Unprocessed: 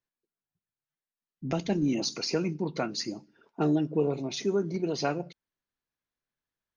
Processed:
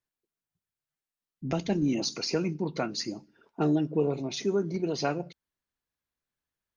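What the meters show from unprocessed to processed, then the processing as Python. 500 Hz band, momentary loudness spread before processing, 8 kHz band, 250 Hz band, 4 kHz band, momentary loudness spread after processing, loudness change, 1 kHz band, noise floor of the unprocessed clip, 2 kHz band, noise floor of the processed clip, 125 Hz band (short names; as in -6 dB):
0.0 dB, 10 LU, n/a, 0.0 dB, 0.0 dB, 10 LU, 0.0 dB, 0.0 dB, under -85 dBFS, 0.0 dB, under -85 dBFS, +0.5 dB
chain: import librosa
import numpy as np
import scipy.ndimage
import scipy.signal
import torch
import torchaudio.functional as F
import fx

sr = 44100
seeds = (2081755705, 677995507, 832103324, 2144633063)

y = fx.peak_eq(x, sr, hz=65.0, db=6.5, octaves=0.77)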